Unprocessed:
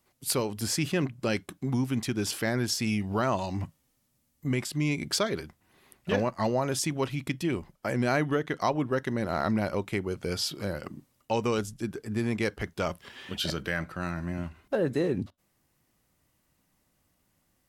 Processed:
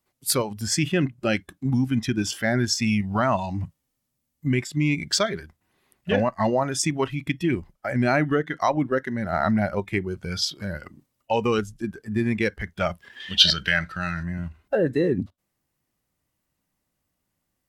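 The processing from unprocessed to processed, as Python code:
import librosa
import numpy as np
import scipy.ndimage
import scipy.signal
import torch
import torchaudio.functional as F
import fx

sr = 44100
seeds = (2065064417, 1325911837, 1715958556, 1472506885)

p1 = fx.noise_reduce_blind(x, sr, reduce_db=11)
p2 = fx.peak_eq(p1, sr, hz=4200.0, db=12.5, octaves=1.9, at=(13.2, 14.23))
p3 = fx.level_steps(p2, sr, step_db=10)
p4 = p2 + (p3 * librosa.db_to_amplitude(0.0))
y = p4 * librosa.db_to_amplitude(1.5)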